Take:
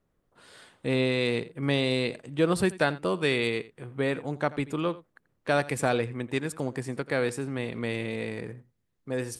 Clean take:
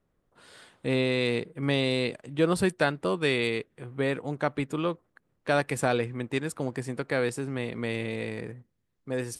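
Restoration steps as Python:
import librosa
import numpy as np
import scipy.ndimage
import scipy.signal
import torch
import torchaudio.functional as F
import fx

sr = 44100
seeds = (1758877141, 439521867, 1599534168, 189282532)

y = fx.fix_echo_inverse(x, sr, delay_ms=85, level_db=-18.5)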